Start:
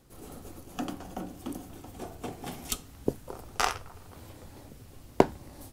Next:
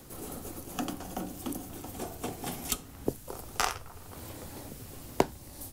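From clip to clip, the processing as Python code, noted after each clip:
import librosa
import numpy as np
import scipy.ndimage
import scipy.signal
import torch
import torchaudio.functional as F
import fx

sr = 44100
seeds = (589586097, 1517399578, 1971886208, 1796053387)

y = fx.high_shelf(x, sr, hz=6300.0, db=9.0)
y = fx.band_squash(y, sr, depth_pct=40)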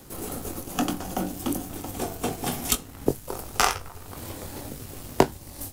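y = fx.leveller(x, sr, passes=1)
y = fx.doubler(y, sr, ms=21.0, db=-9.0)
y = y * librosa.db_to_amplitude(4.0)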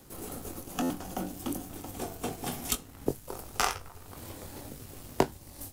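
y = fx.buffer_glitch(x, sr, at_s=(0.82,), block=512, repeats=6)
y = y * librosa.db_to_amplitude(-6.5)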